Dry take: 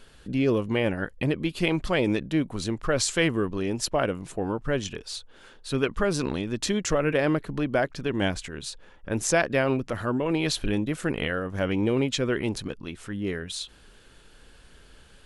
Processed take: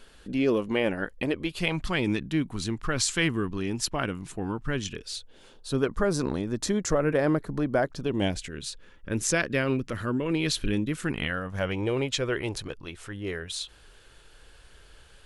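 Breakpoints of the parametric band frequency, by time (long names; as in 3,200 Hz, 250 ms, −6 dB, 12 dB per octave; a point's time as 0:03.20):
parametric band −10.5 dB 0.84 octaves
0:01.18 110 Hz
0:01.92 560 Hz
0:04.73 560 Hz
0:05.90 2,800 Hz
0:07.81 2,800 Hz
0:08.63 750 Hz
0:10.85 750 Hz
0:11.87 220 Hz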